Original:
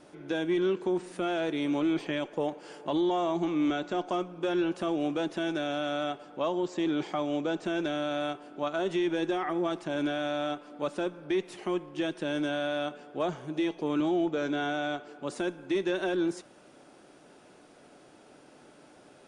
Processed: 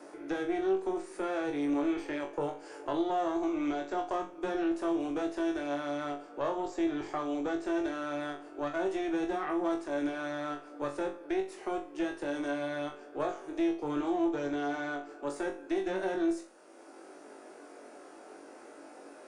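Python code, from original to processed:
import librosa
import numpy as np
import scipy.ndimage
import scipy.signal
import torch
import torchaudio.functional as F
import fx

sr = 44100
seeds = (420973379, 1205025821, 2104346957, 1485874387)

y = scipy.signal.sosfilt(scipy.signal.cheby1(3, 1.0, 310.0, 'highpass', fs=sr, output='sos'), x)
y = fx.peak_eq(y, sr, hz=3300.0, db=-9.0, octaves=0.81)
y = fx.tube_stage(y, sr, drive_db=22.0, bias=0.7)
y = fx.room_flutter(y, sr, wall_m=3.6, rt60_s=0.29)
y = fx.band_squash(y, sr, depth_pct=40)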